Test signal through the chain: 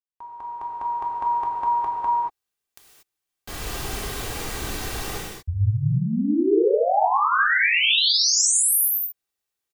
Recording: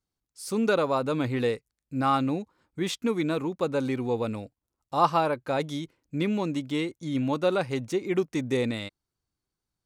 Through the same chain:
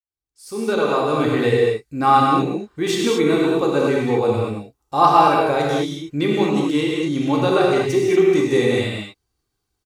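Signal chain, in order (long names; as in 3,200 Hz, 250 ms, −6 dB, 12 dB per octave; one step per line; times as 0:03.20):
fade in at the beginning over 1.29 s
comb filter 2.6 ms, depth 37%
reverb whose tail is shaped and stops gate 260 ms flat, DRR −3.5 dB
level +4.5 dB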